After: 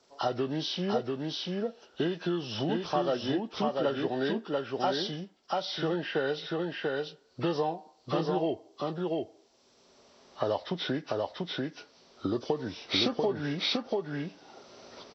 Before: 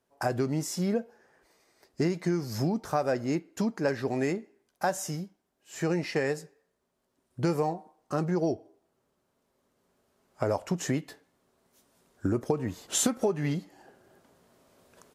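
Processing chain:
hearing-aid frequency compression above 1,000 Hz 1.5 to 1
bass and treble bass −8 dB, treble +9 dB
single-tap delay 690 ms −3 dB
multiband upward and downward compressor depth 40%

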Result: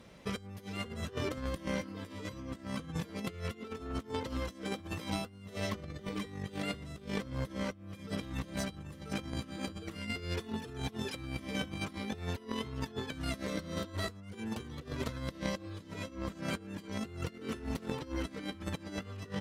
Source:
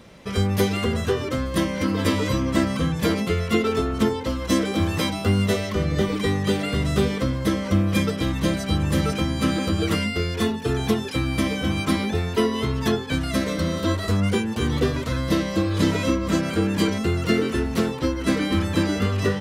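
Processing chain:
compressor whose output falls as the input rises −27 dBFS, ratio −0.5
harmonic generator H 3 −15 dB, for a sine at −11 dBFS
level −6.5 dB

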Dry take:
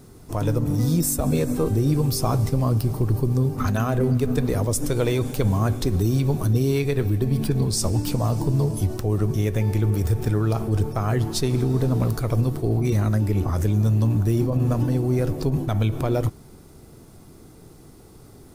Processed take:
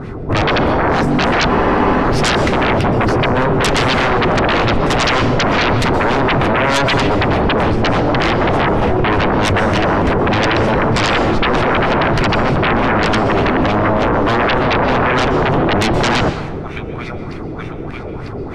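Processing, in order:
delay with a high-pass on its return 950 ms, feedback 69%, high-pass 2,500 Hz, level −8 dB
auto-filter low-pass sine 3.3 Hz 490–2,400 Hz
sine wavefolder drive 20 dB, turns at −7 dBFS
dense smooth reverb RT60 1 s, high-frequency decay 0.7×, pre-delay 110 ms, DRR 10.5 dB
frozen spectrum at 0:01.51, 0.53 s
level −4 dB

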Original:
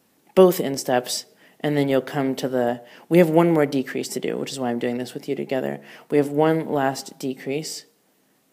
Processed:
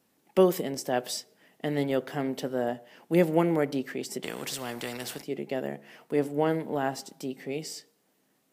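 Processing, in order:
0:04.23–0:05.22: every bin compressed towards the loudest bin 2 to 1
level −7.5 dB

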